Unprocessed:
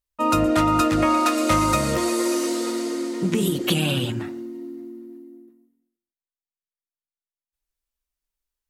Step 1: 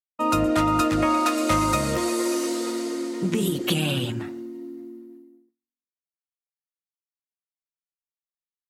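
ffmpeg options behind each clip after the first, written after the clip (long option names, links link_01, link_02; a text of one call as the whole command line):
ffmpeg -i in.wav -af "agate=range=-33dB:threshold=-37dB:ratio=3:detection=peak,volume=-2dB" out.wav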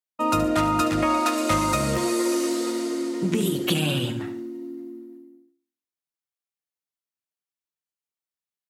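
ffmpeg -i in.wav -af "highpass=50,aecho=1:1:72|144|216|288:0.266|0.0905|0.0308|0.0105" out.wav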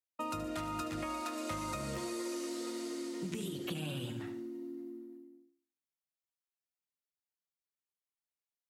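ffmpeg -i in.wav -filter_complex "[0:a]acrossover=split=89|2000|7500[link_01][link_02][link_03][link_04];[link_01]acompressor=threshold=-44dB:ratio=4[link_05];[link_02]acompressor=threshold=-31dB:ratio=4[link_06];[link_03]acompressor=threshold=-41dB:ratio=4[link_07];[link_04]acompressor=threshold=-48dB:ratio=4[link_08];[link_05][link_06][link_07][link_08]amix=inputs=4:normalize=0,volume=-7.5dB" out.wav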